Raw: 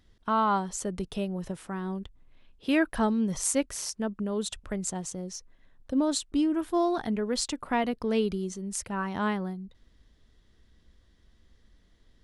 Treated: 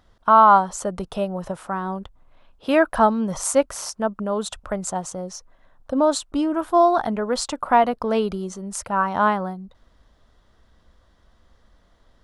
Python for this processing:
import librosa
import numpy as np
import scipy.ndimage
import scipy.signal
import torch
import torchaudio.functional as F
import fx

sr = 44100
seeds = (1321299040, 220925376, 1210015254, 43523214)

y = fx.band_shelf(x, sr, hz=880.0, db=10.5, octaves=1.7)
y = y * 10.0 ** (3.0 / 20.0)